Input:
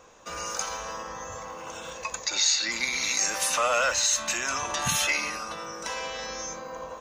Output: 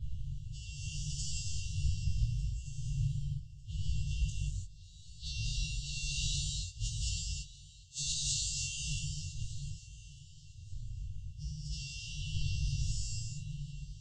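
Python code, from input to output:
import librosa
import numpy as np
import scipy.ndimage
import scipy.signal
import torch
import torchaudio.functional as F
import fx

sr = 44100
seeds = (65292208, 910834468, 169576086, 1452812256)

y = fx.vocoder_arp(x, sr, chord='minor triad', root=48, every_ms=109)
y = fx.dmg_wind(y, sr, seeds[0], corner_hz=370.0, level_db=-25.0)
y = fx.peak_eq(y, sr, hz=500.0, db=-3.0, octaves=0.53)
y = fx.stretch_vocoder(y, sr, factor=2.0)
y = fx.gate_flip(y, sr, shuts_db=-19.0, range_db=-30)
y = fx.brickwall_bandstop(y, sr, low_hz=150.0, high_hz=2700.0)
y = fx.low_shelf(y, sr, hz=190.0, db=9.0)
y = fx.doubler(y, sr, ms=20.0, db=-3.5)
y = fx.echo_feedback(y, sr, ms=1200, feedback_pct=25, wet_db=-20.0)
y = fx.rev_gated(y, sr, seeds[1], gate_ms=360, shape='flat', drr_db=-4.0)
y = F.gain(torch.from_numpy(y), -7.5).numpy()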